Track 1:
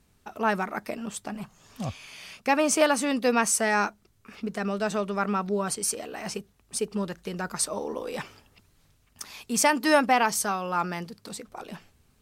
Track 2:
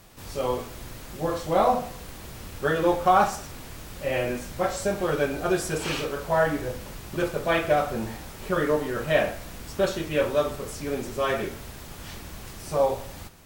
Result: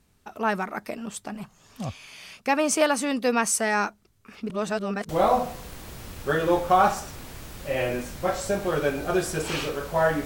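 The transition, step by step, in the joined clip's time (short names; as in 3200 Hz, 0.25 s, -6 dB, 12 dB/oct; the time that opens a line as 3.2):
track 1
4.5–5.09 reverse
5.09 switch to track 2 from 1.45 s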